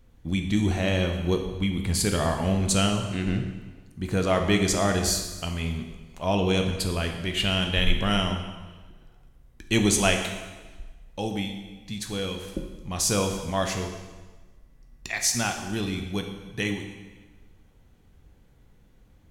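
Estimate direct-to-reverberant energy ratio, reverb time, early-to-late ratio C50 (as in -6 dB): 4.0 dB, 1.3 s, 6.5 dB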